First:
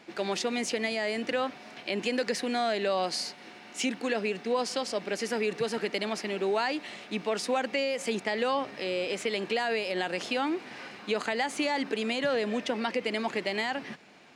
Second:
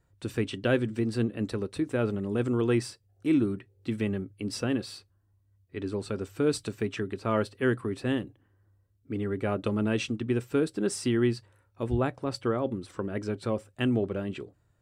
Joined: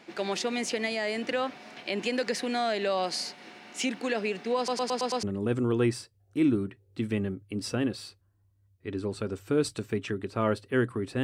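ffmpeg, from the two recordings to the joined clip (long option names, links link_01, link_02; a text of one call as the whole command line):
ffmpeg -i cue0.wav -i cue1.wav -filter_complex "[0:a]apad=whole_dur=11.23,atrim=end=11.23,asplit=6[link_01][link_02][link_03][link_04][link_05][link_06];[link_01]atrim=end=4.682[link_07];[link_02]atrim=start=4.568:end=4.682[link_08];[link_03]atrim=start=4.568:end=4.682[link_09];[link_04]atrim=start=4.568:end=4.682[link_10];[link_05]atrim=start=4.568:end=4.682[link_11];[link_06]atrim=start=4.568:end=4.682[link_12];[1:a]atrim=start=2.118:end=8.12[link_13];[link_07][link_08]acrossfade=duration=0.004:curve1=hsin:curve2=hsin[link_14];[link_14][link_09]acrossfade=duration=0.004:curve1=hsin:curve2=hsin[link_15];[link_15][link_10]acrossfade=duration=0.004:curve1=hsin:curve2=hsin[link_16];[link_16][link_11]acrossfade=duration=0.004:curve1=hsin:curve2=hsin[link_17];[link_17][link_12]acrossfade=duration=0.004:curve1=hsin:curve2=hsin[link_18];[link_18][link_13]acrossfade=duration=0.004:curve1=hsin:curve2=hsin" out.wav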